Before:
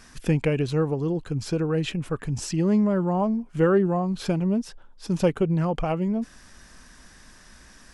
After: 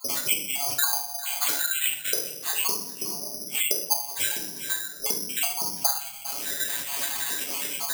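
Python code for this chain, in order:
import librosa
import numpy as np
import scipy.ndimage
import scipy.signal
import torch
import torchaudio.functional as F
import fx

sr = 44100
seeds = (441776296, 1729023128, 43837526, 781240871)

y = fx.spec_dropout(x, sr, seeds[0], share_pct=79)
y = fx.peak_eq(y, sr, hz=1200.0, db=-10.0, octaves=0.27)
y = y + 0.97 * np.pad(y, (int(7.1 * sr / 1000.0), 0))[:len(y)]
y = fx.rider(y, sr, range_db=5, speed_s=0.5)
y = fx.gate_flip(y, sr, shuts_db=-23.0, range_db=-40)
y = 10.0 ** (-22.0 / 20.0) * np.tanh(y / 10.0 ** (-22.0 / 20.0))
y = fx.bandpass_edges(y, sr, low_hz=500.0, high_hz=3600.0)
y = y + 10.0 ** (-20.5 / 20.0) * np.pad(y, (int(399 * sr / 1000.0), 0))[:len(y)]
y = fx.room_shoebox(y, sr, seeds[1], volume_m3=90.0, walls='mixed', distance_m=1.5)
y = (np.kron(y[::8], np.eye(8)[0]) * 8)[:len(y)]
y = fx.band_squash(y, sr, depth_pct=100)
y = F.gain(torch.from_numpy(y), 5.5).numpy()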